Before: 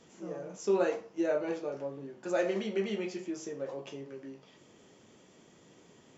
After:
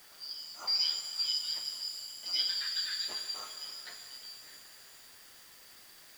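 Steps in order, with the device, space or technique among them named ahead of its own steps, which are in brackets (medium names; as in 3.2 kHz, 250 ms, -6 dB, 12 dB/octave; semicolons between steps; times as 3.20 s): 3.41–4.08 s: high-pass 650 Hz; split-band scrambled radio (four frequency bands reordered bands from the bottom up 4321; band-pass 300–3000 Hz; white noise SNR 19 dB); pitch-shifted reverb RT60 3.3 s, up +7 st, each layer -8 dB, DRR 6 dB; trim +5.5 dB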